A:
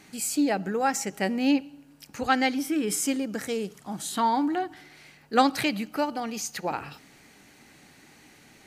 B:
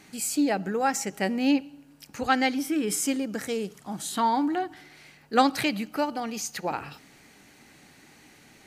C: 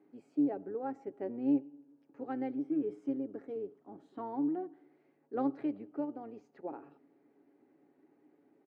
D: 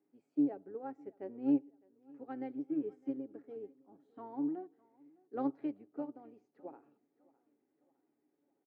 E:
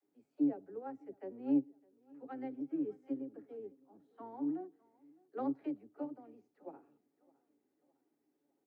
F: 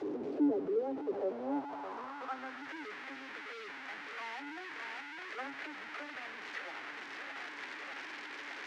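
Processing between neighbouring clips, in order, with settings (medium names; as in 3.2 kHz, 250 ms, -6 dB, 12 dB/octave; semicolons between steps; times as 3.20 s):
no audible change
octave divider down 1 oct, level -5 dB; ladder band-pass 390 Hz, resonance 50%; comb 7.2 ms, depth 34%
feedback delay 608 ms, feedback 47%, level -18 dB; upward expansion 1.5:1, over -52 dBFS
phase dispersion lows, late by 50 ms, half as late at 310 Hz; trim -1 dB
one-bit delta coder 32 kbps, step -47 dBFS; power-law waveshaper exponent 0.5; band-pass sweep 400 Hz -> 1.9 kHz, 0.89–2.78 s; trim +4.5 dB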